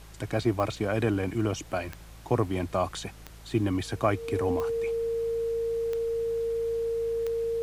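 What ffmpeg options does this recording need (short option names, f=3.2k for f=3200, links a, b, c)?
-af "adeclick=t=4,bandreject=f=54.4:t=h:w=4,bandreject=f=108.8:t=h:w=4,bandreject=f=163.2:t=h:w=4,bandreject=f=460:w=30,afftdn=nr=29:nf=-46"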